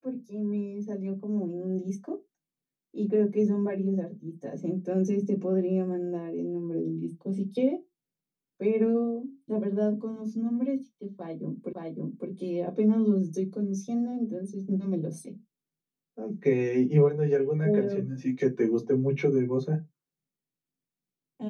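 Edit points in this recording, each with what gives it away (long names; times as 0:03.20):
0:11.73: the same again, the last 0.56 s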